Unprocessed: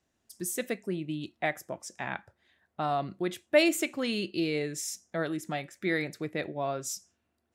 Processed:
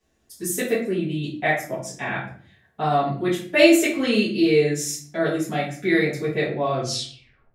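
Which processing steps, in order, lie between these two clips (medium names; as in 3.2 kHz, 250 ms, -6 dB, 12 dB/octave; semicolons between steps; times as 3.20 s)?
tape stop on the ending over 0.83 s; simulated room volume 45 m³, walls mixed, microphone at 1.9 m; trim -1.5 dB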